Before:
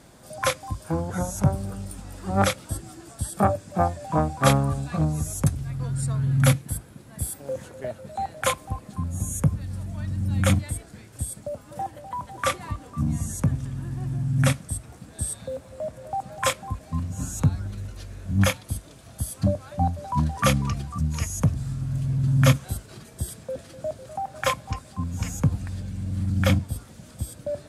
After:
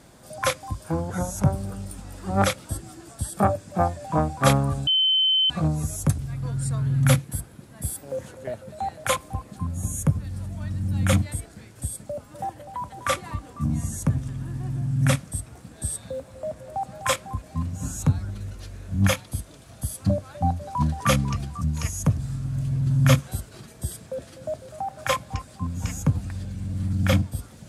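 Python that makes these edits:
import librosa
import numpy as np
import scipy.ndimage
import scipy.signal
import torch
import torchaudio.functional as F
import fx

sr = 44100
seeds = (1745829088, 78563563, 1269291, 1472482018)

y = fx.edit(x, sr, fx.insert_tone(at_s=4.87, length_s=0.63, hz=3070.0, db=-17.0), tone=tone)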